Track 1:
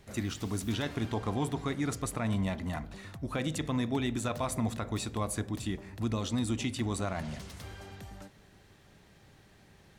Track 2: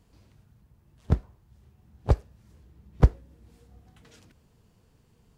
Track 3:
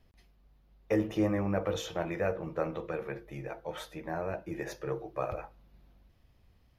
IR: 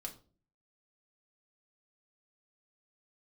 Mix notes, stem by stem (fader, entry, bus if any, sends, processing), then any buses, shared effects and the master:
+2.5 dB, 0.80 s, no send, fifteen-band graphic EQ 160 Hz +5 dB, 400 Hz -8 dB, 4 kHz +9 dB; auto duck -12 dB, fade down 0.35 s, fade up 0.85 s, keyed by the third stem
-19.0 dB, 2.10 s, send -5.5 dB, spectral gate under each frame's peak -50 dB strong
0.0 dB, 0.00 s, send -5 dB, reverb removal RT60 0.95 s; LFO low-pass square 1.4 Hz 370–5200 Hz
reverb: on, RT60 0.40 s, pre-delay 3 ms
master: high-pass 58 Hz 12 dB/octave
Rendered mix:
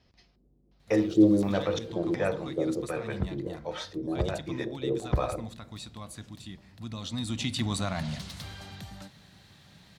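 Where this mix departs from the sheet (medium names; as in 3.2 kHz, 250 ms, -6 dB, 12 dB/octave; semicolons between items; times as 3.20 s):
stem 2 -19.0 dB -> -9.0 dB; stem 3: missing reverb removal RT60 0.95 s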